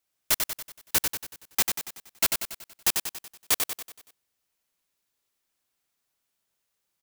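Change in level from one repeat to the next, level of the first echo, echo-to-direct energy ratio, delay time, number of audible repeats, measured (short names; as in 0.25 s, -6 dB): -6.0 dB, -5.0 dB, -4.0 dB, 94 ms, 5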